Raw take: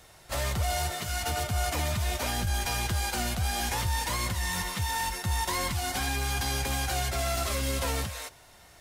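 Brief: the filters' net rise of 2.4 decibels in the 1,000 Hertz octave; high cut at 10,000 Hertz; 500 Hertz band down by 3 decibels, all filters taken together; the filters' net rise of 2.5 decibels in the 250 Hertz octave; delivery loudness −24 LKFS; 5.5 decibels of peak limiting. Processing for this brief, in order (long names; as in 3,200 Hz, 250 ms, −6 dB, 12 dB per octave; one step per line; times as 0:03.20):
low-pass filter 10,000 Hz
parametric band 250 Hz +5 dB
parametric band 500 Hz −8.5 dB
parametric band 1,000 Hz +6 dB
level +8 dB
brickwall limiter −15 dBFS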